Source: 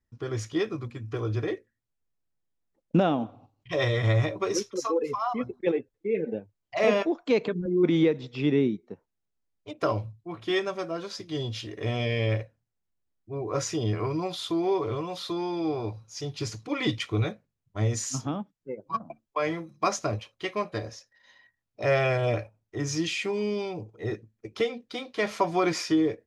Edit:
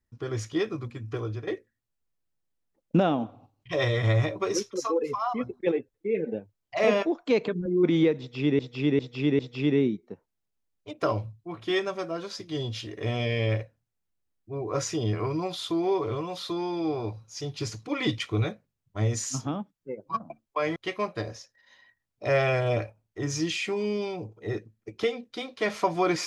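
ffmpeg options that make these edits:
-filter_complex "[0:a]asplit=6[s0][s1][s2][s3][s4][s5];[s0]atrim=end=1.47,asetpts=PTS-STARTPTS,afade=t=out:st=1.14:d=0.33:silence=0.266073[s6];[s1]atrim=start=1.47:end=8.592,asetpts=PTS-STARTPTS,afade=t=in:d=0.004:c=hsin:silence=0.266073[s7];[s2]atrim=start=8.188:end=8.592[s8];[s3]atrim=start=8.188:end=8.592[s9];[s4]atrim=start=8.188:end=19.562[s10];[s5]atrim=start=20.328[s11];[s6][s7]concat=n=2:v=0:a=1[s12];[s12][s8]acrossfade=d=0.004:c1=hsin:c2=hsin[s13];[s13][s9]acrossfade=d=0.004:c1=hsin:c2=hsin[s14];[s14][s10]acrossfade=d=0.004:c1=hsin:c2=hsin[s15];[s15][s11]acrossfade=d=0.004:c1=hsin:c2=hsin"

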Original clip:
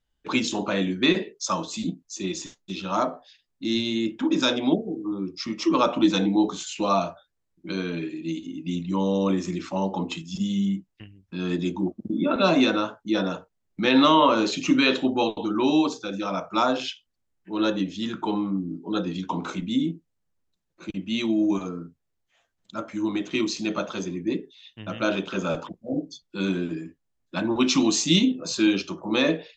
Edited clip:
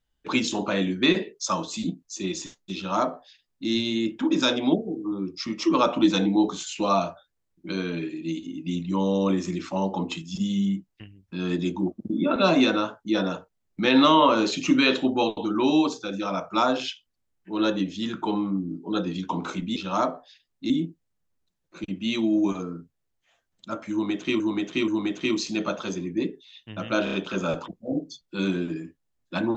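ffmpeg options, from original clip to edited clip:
-filter_complex "[0:a]asplit=8[s0][s1][s2][s3][s4][s5][s6][s7];[s0]atrim=end=19.762[s8];[s1]atrim=start=2.748:end=3.692[s9];[s2]atrim=start=19.758:end=23.462[s10];[s3]atrim=start=22.978:end=23.462[s11];[s4]atrim=start=22.978:end=25.172[s12];[s5]atrim=start=25.138:end=25.172[s13];[s6]atrim=start=25.138:end=25.172[s14];[s7]atrim=start=25.138[s15];[s8][s9]acrossfade=d=0.004:c1=hsin:c2=hsin[s16];[s16][s10]acrossfade=d=0.004:c1=hsin:c2=hsin[s17];[s17][s11]acrossfade=d=0.004:c1=hsin:c2=hsin[s18];[s18][s12]acrossfade=d=0.004:c1=hsin:c2=hsin[s19];[s19][s13]acrossfade=d=0.004:c1=hsin:c2=hsin[s20];[s20][s14]acrossfade=d=0.004:c1=hsin:c2=hsin[s21];[s21][s15]acrossfade=d=0.004:c1=hsin:c2=hsin"

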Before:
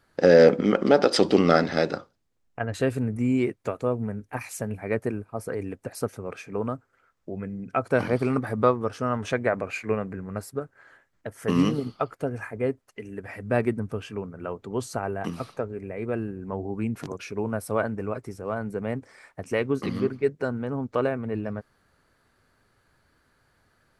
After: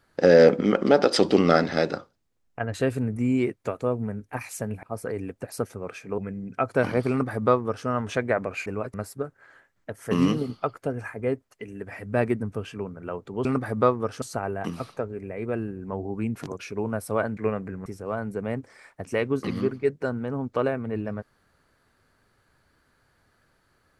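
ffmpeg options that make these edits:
-filter_complex "[0:a]asplit=9[s0][s1][s2][s3][s4][s5][s6][s7][s8];[s0]atrim=end=4.832[s9];[s1]atrim=start=5.258:end=6.612[s10];[s2]atrim=start=7.338:end=9.822[s11];[s3]atrim=start=17.968:end=18.252[s12];[s4]atrim=start=10.308:end=14.822[s13];[s5]atrim=start=8.258:end=9.032[s14];[s6]atrim=start=14.818:end=17.972[s15];[s7]atrim=start=9.818:end=10.312[s16];[s8]atrim=start=18.248[s17];[s9][s10]acrossfade=d=0.004:c1=hsin:c2=hsin[s18];[s18][s11]acrossfade=d=0.004:c1=hsin:c2=hsin[s19];[s19][s12]acrossfade=d=0.004:c1=hsin:c2=hsin[s20];[s20][s13]acrossfade=d=0.004:c1=hsin:c2=hsin[s21];[s21][s14]acrossfade=d=0.004:c1=hsin:c2=hsin[s22];[s22][s15]acrossfade=d=0.004:c1=hsin:c2=hsin[s23];[s23][s16]acrossfade=d=0.004:c1=hsin:c2=hsin[s24];[s24][s17]acrossfade=d=0.004:c1=hsin:c2=hsin"

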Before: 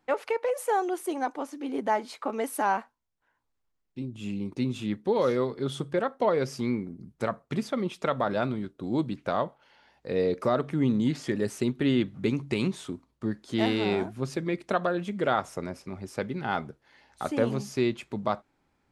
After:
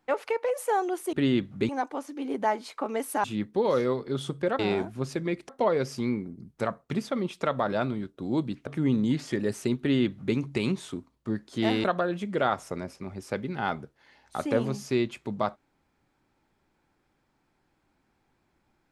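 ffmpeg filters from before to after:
-filter_complex "[0:a]asplit=8[s0][s1][s2][s3][s4][s5][s6][s7];[s0]atrim=end=1.132[s8];[s1]atrim=start=11.758:end=12.322[s9];[s2]atrim=start=1.128:end=2.682[s10];[s3]atrim=start=4.748:end=6.102[s11];[s4]atrim=start=13.798:end=14.702[s12];[s5]atrim=start=6.098:end=9.282[s13];[s6]atrim=start=10.628:end=13.802[s14];[s7]atrim=start=14.698[s15];[s8][s9]acrossfade=d=0.004:c1=hsin:c2=hsin[s16];[s16][s10]acrossfade=d=0.004:c1=hsin:c2=hsin[s17];[s17][s11]acrossfade=d=0.004:c1=hsin:c2=hsin[s18];[s18][s12]acrossfade=d=0.004:c1=hsin:c2=hsin[s19];[s19][s13]acrossfade=d=0.004:c1=hsin:c2=hsin[s20];[s20][s14]acrossfade=d=0.004:c1=hsin:c2=hsin[s21];[s21][s15]acrossfade=d=0.004:c1=hsin:c2=hsin"

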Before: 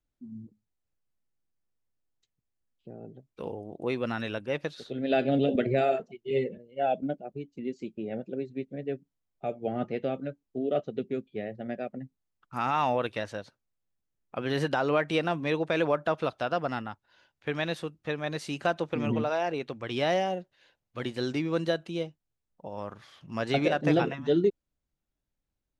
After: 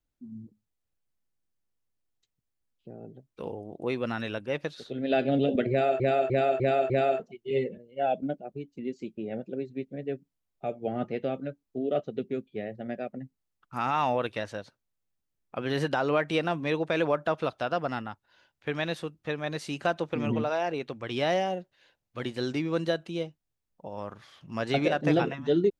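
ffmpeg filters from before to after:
-filter_complex "[0:a]asplit=5[s0][s1][s2][s3][s4];[s0]atrim=end=6.002[s5];[s1]atrim=start=5.698:end=6.002[s6];[s2]atrim=start=5.698:end=6.002[s7];[s3]atrim=start=5.698:end=6.002[s8];[s4]atrim=start=5.698[s9];[s5][s6]acrossfade=d=0.004:c1=hsin:c2=hsin[s10];[s10][s7]acrossfade=d=0.004:c1=hsin:c2=hsin[s11];[s11][s8]acrossfade=d=0.004:c1=hsin:c2=hsin[s12];[s12][s9]acrossfade=d=0.004:c1=hsin:c2=hsin"

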